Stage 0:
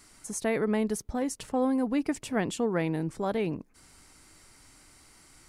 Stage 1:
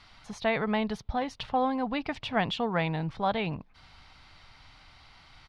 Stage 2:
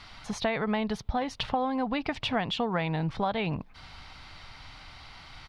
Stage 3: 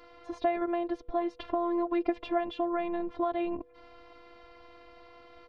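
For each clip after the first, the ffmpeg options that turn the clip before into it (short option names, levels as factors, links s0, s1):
-af "firequalizer=gain_entry='entry(110,0);entry(330,-14);entry(740,2);entry(1700,-2);entry(3600,5);entry(7700,-28)':delay=0.05:min_phase=1,volume=1.78"
-af "acompressor=threshold=0.0224:ratio=5,volume=2.24"
-af "bandpass=f=320:t=q:w=0.62:csg=0,afftfilt=real='hypot(re,im)*cos(PI*b)':imag='0':win_size=512:overlap=0.75,aeval=exprs='val(0)+0.000631*sin(2*PI*490*n/s)':c=same,volume=2.11"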